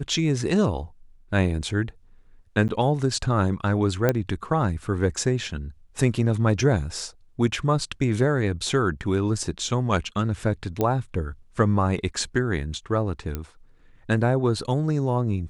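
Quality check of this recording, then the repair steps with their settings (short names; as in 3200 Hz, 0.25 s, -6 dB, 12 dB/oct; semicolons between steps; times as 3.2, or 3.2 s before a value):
2.68–2.69 gap 9.6 ms
4.09 pop -8 dBFS
10.81 pop -11 dBFS
13.35 pop -15 dBFS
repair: de-click; interpolate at 2.68, 9.6 ms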